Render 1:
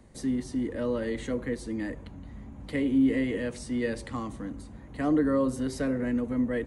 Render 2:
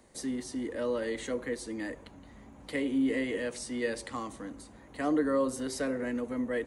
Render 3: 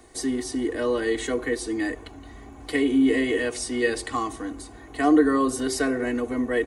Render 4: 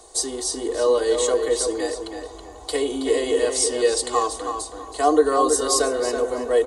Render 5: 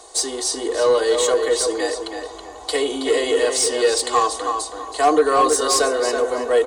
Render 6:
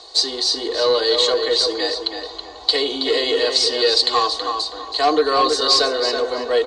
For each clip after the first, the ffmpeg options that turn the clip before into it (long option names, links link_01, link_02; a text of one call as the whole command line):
ffmpeg -i in.wav -af "bass=frequency=250:gain=-12,treble=frequency=4000:gain=4" out.wav
ffmpeg -i in.wav -af "aecho=1:1:2.7:0.81,volume=7dB" out.wav
ffmpeg -i in.wav -filter_complex "[0:a]equalizer=frequency=125:width_type=o:width=1:gain=-9,equalizer=frequency=250:width_type=o:width=1:gain=-11,equalizer=frequency=500:width_type=o:width=1:gain=9,equalizer=frequency=1000:width_type=o:width=1:gain=7,equalizer=frequency=2000:width_type=o:width=1:gain=-11,equalizer=frequency=4000:width_type=o:width=1:gain=8,equalizer=frequency=8000:width_type=o:width=1:gain=11,asplit=2[link_01][link_02];[link_02]adelay=324,lowpass=frequency=3700:poles=1,volume=-6dB,asplit=2[link_03][link_04];[link_04]adelay=324,lowpass=frequency=3700:poles=1,volume=0.29,asplit=2[link_05][link_06];[link_06]adelay=324,lowpass=frequency=3700:poles=1,volume=0.29,asplit=2[link_07][link_08];[link_08]adelay=324,lowpass=frequency=3700:poles=1,volume=0.29[link_09];[link_01][link_03][link_05][link_07][link_09]amix=inputs=5:normalize=0" out.wav
ffmpeg -i in.wav -filter_complex "[0:a]asplit=2[link_01][link_02];[link_02]highpass=frequency=720:poles=1,volume=12dB,asoftclip=type=tanh:threshold=-5.5dB[link_03];[link_01][link_03]amix=inputs=2:normalize=0,lowpass=frequency=5600:poles=1,volume=-6dB" out.wav
ffmpeg -i in.wav -af "lowpass=frequency=4300:width_type=q:width=6.2,volume=-1.5dB" out.wav